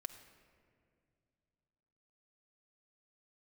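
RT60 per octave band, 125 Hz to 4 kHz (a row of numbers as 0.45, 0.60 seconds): 3.3, 3.0, 2.6, 2.0, 1.9, 1.2 seconds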